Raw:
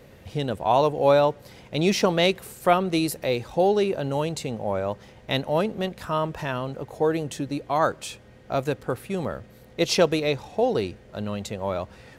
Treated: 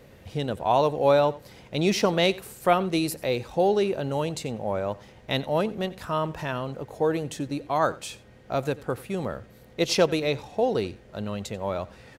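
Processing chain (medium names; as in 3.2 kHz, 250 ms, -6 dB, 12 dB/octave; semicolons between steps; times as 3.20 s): delay 89 ms -20 dB; trim -1.5 dB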